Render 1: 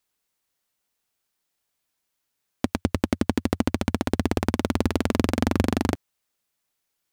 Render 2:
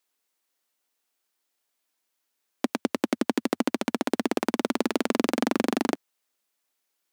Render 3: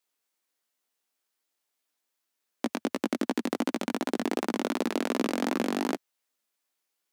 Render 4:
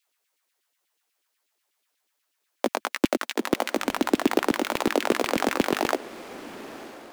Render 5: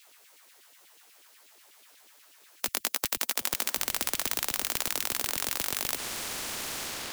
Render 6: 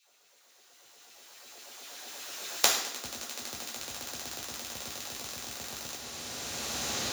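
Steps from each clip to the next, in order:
high-pass filter 230 Hz 24 dB per octave
chorus effect 2.7 Hz, delay 15 ms, depth 6 ms
floating-point word with a short mantissa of 2 bits; auto-filter high-pass saw down 8.2 Hz 250–3,100 Hz; feedback delay with all-pass diffusion 966 ms, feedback 41%, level −15.5 dB; level +4.5 dB
every bin compressed towards the loudest bin 10 to 1; level +5.5 dB
camcorder AGC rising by 11 dB per second; convolution reverb RT60 0.75 s, pre-delay 3 ms, DRR −3.5 dB; level −15.5 dB

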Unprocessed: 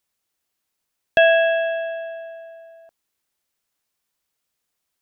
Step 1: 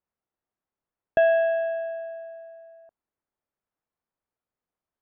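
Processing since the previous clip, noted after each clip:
low-pass filter 1,200 Hz 12 dB per octave
level −3.5 dB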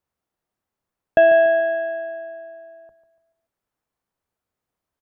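sub-octave generator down 1 octave, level −5 dB
repeating echo 144 ms, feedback 44%, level −13 dB
level +6 dB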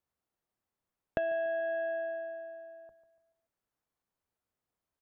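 downward compressor 10 to 1, threshold −24 dBFS, peak gain reduction 14 dB
level −6 dB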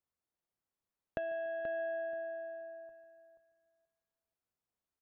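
repeating echo 481 ms, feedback 18%, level −9.5 dB
level −6 dB

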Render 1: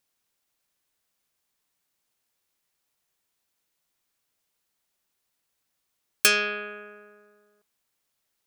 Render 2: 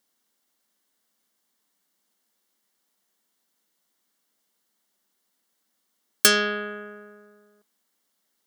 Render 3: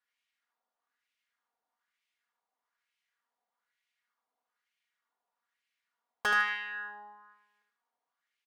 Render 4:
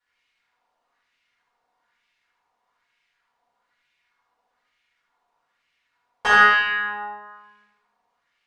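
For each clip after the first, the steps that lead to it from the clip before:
low shelf with overshoot 160 Hz −9 dB, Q 3; notch filter 2,500 Hz, Q 5.8; level +3.5 dB
lower of the sound and its delayed copy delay 4.2 ms; LFO wah 1.1 Hz 780–2,500 Hz, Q 3; on a send: repeating echo 76 ms, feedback 33%, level −5.5 dB; on the sum: level +3 dB
high-frequency loss of the air 73 metres; rectangular room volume 250 cubic metres, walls mixed, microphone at 4.4 metres; level +3 dB

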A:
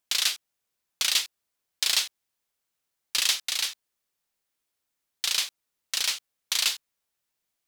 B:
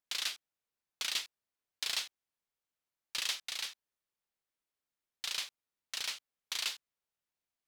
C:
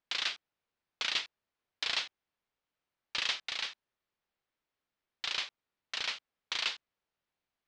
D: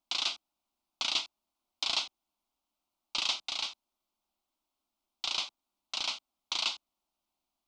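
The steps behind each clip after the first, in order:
high-shelf EQ 4,400 Hz −7.5 dB; level −7.5 dB
Gaussian smoothing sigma 1.8 samples; level +6.5 dB
phaser with its sweep stopped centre 470 Hz, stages 6; level +5.5 dB

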